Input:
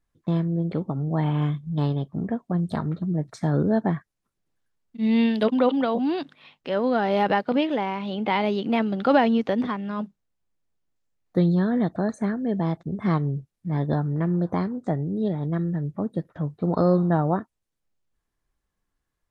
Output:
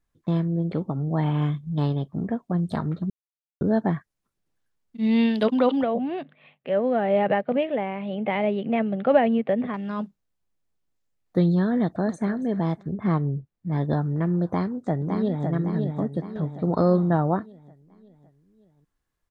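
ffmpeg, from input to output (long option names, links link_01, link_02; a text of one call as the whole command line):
ffmpeg -i in.wav -filter_complex "[0:a]asettb=1/sr,asplit=3[link_01][link_02][link_03];[link_01]atrim=end=5.834[link_04];[link_02]atrim=start=5.83:end=9.74,asetpts=PTS-STARTPTS,afade=type=in:duration=0.004:curve=qsin,afade=type=out:start_time=3.906:duration=0.004:curve=qsin,highpass=130,equalizer=frequency=140:width_type=q:width=4:gain=7,equalizer=frequency=310:width_type=q:width=4:gain=-8,equalizer=frequency=610:width_type=q:width=4:gain=5,equalizer=frequency=960:width_type=q:width=4:gain=-9,equalizer=frequency=1400:width_type=q:width=4:gain=-7,lowpass=frequency=2600:width=0.5412,lowpass=frequency=2600:width=1.3066[link_05];[link_03]atrim=start=9.736[link_06];[link_04][link_05]acrossfade=duration=0.004:curve1=hsin:curve2=qsin[link_07];[link_07][link_06]acrossfade=duration=0.004:curve1=qsin:curve2=hsin,asplit=2[link_08][link_09];[link_09]afade=type=in:start_time=11.78:duration=0.01,afade=type=out:start_time=12.33:duration=0.01,aecho=0:1:280|560:0.158489|0.0396223[link_10];[link_08][link_10]amix=inputs=2:normalize=0,asettb=1/sr,asplit=3[link_11][link_12][link_13];[link_11]atrim=end=12.924[link_14];[link_12]atrim=start=12.92:end=13.72,asetpts=PTS-STARTPTS,afade=type=in:duration=0.004:curve=qsin,afade=type=out:start_time=0.796:duration=0.004:curve=qsin,lowpass=frequency=1800:poles=1[link_15];[link_13]atrim=start=13.716[link_16];[link_14][link_15]acrossfade=duration=0.004:curve1=hsin:curve2=qsin[link_17];[link_17][link_16]acrossfade=duration=0.004:curve1=qsin:curve2=hsin,asplit=2[link_18][link_19];[link_19]afade=type=in:start_time=14.45:duration=0.01,afade=type=out:start_time=15.48:duration=0.01,aecho=0:1:560|1120|1680|2240|2800|3360:0.595662|0.297831|0.148916|0.0744578|0.0372289|0.0186144[link_20];[link_18][link_20]amix=inputs=2:normalize=0,asplit=3[link_21][link_22][link_23];[link_21]atrim=end=3.1,asetpts=PTS-STARTPTS,afade=type=out:start_time=3.096:duration=0.004:curve=hsin[link_24];[link_22]atrim=start=3.1:end=3.61,asetpts=PTS-STARTPTS,volume=0[link_25];[link_23]atrim=start=3.61,asetpts=PTS-STARTPTS,afade=type=in:duration=0.004:curve=hsin[link_26];[link_24][link_25][link_26]concat=n=3:v=0:a=1" out.wav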